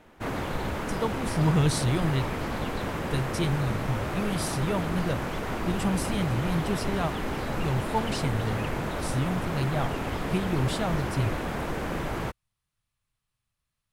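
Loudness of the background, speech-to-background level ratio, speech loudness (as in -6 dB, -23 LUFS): -31.5 LUFS, 1.5 dB, -30.0 LUFS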